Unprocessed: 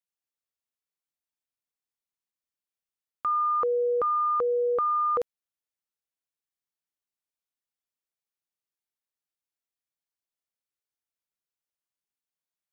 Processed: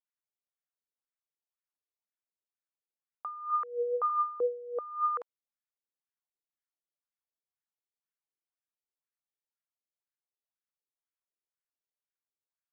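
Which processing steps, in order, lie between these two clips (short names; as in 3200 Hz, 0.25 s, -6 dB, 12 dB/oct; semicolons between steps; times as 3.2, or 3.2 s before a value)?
wah 2 Hz 370–1700 Hz, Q 2.8; 3.5–4.1 rippled Chebyshev high-pass 240 Hz, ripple 3 dB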